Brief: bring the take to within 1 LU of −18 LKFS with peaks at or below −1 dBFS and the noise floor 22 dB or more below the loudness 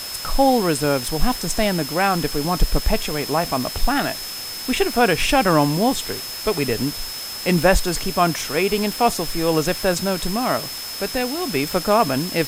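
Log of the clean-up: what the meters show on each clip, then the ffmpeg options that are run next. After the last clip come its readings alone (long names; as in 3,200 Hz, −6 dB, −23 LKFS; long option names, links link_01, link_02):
interfering tone 5,200 Hz; level of the tone −31 dBFS; background noise floor −31 dBFS; target noise floor −43 dBFS; integrated loudness −20.5 LKFS; sample peak −3.0 dBFS; target loudness −18.0 LKFS
→ -af "bandreject=frequency=5200:width=30"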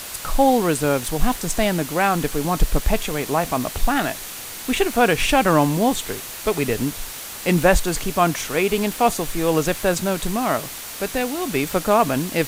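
interfering tone none found; background noise floor −34 dBFS; target noise floor −43 dBFS
→ -af "afftdn=noise_reduction=9:noise_floor=-34"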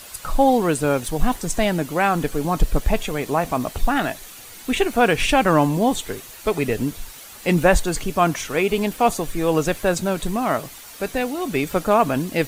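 background noise floor −41 dBFS; target noise floor −43 dBFS
→ -af "afftdn=noise_reduction=6:noise_floor=-41"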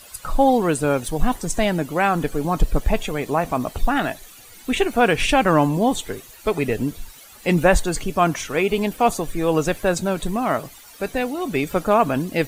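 background noise floor −45 dBFS; integrated loudness −21.5 LKFS; sample peak −3.5 dBFS; target loudness −18.0 LKFS
→ -af "volume=3.5dB,alimiter=limit=-1dB:level=0:latency=1"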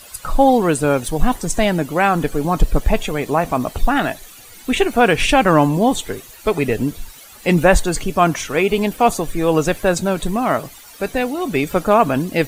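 integrated loudness −18.0 LKFS; sample peak −1.0 dBFS; background noise floor −41 dBFS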